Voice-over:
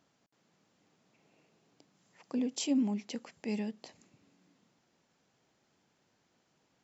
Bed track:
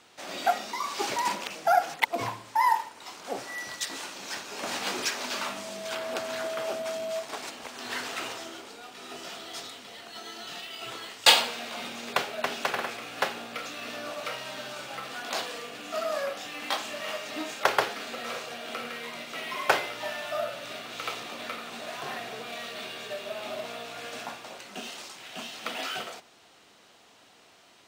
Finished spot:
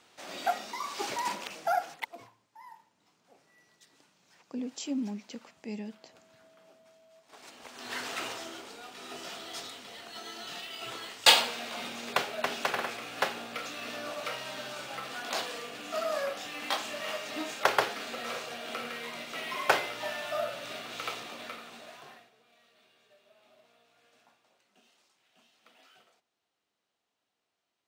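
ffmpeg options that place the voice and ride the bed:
ffmpeg -i stem1.wav -i stem2.wav -filter_complex "[0:a]adelay=2200,volume=-3.5dB[link_01];[1:a]volume=22dB,afade=type=out:start_time=1.59:duration=0.7:silence=0.0668344,afade=type=in:start_time=7.23:duration=0.9:silence=0.0473151,afade=type=out:start_time=20.95:duration=1.36:silence=0.0530884[link_02];[link_01][link_02]amix=inputs=2:normalize=0" out.wav

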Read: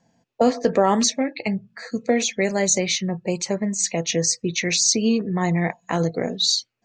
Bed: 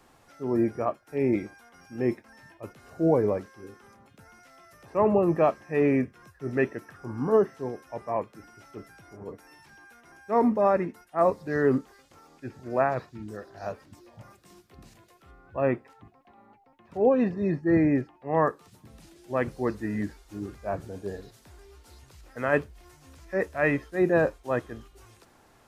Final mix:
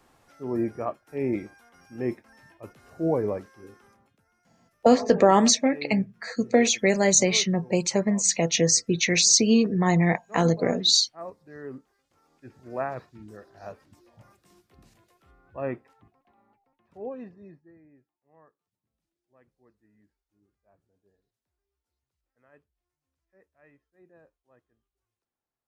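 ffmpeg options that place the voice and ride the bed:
ffmpeg -i stem1.wav -i stem2.wav -filter_complex "[0:a]adelay=4450,volume=0.5dB[link_01];[1:a]volume=8dB,afade=type=out:start_time=3.77:duration=0.45:silence=0.199526,afade=type=in:start_time=12.02:duration=0.68:silence=0.298538,afade=type=out:start_time=15.79:duration=1.95:silence=0.0354813[link_02];[link_01][link_02]amix=inputs=2:normalize=0" out.wav

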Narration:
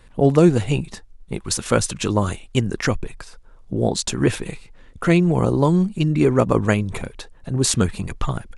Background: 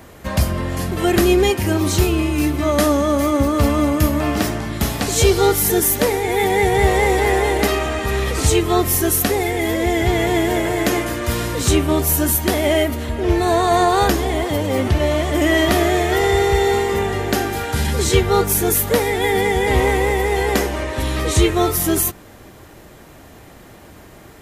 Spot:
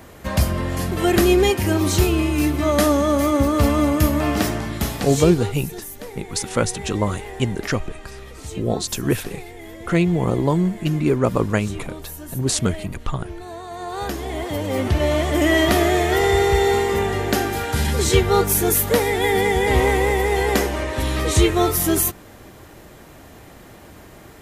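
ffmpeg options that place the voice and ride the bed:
ffmpeg -i stem1.wav -i stem2.wav -filter_complex "[0:a]adelay=4850,volume=-2dB[link_01];[1:a]volume=16.5dB,afade=type=out:start_time=4.58:duration=0.94:silence=0.133352,afade=type=in:start_time=13.77:duration=1.38:silence=0.133352[link_02];[link_01][link_02]amix=inputs=2:normalize=0" out.wav

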